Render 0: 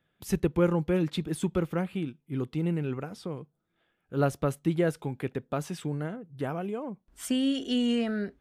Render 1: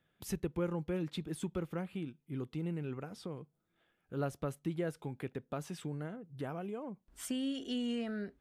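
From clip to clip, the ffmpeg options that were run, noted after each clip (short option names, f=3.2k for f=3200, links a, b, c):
-af "acompressor=threshold=-45dB:ratio=1.5,volume=-2dB"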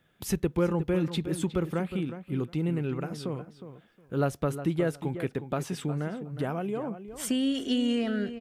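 -filter_complex "[0:a]asplit=2[a][b];[b]adelay=362,lowpass=f=2.8k:p=1,volume=-11dB,asplit=2[c][d];[d]adelay=362,lowpass=f=2.8k:p=1,volume=0.18[e];[a][c][e]amix=inputs=3:normalize=0,volume=9dB"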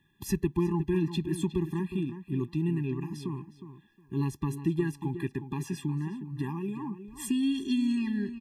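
-af "afftfilt=real='re*eq(mod(floor(b*sr/1024/400),2),0)':imag='im*eq(mod(floor(b*sr/1024/400),2),0)':win_size=1024:overlap=0.75"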